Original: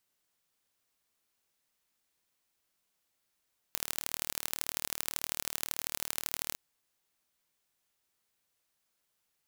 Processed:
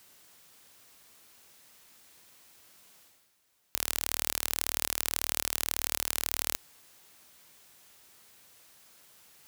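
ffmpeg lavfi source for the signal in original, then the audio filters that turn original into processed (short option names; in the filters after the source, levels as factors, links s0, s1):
-f lavfi -i "aevalsrc='0.631*eq(mod(n,1154),0)*(0.5+0.5*eq(mod(n,3462),0))':d=2.82:s=44100"
-af "areverse,acompressor=mode=upward:threshold=0.00224:ratio=2.5,areverse,highpass=46,alimiter=level_in=2.51:limit=0.891:release=50:level=0:latency=1"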